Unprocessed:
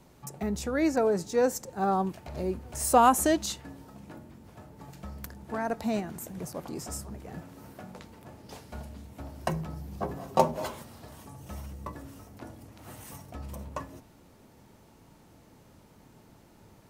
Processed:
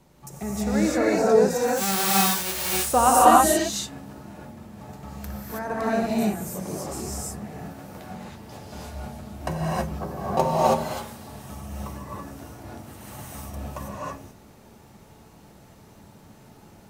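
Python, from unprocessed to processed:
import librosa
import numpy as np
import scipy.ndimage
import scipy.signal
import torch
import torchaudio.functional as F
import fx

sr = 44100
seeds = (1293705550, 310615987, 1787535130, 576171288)

y = fx.envelope_flatten(x, sr, power=0.1, at=(1.64, 2.73), fade=0.02)
y = fx.rev_gated(y, sr, seeds[0], gate_ms=350, shape='rising', drr_db=-7.0)
y = y * librosa.db_to_amplitude(-1.0)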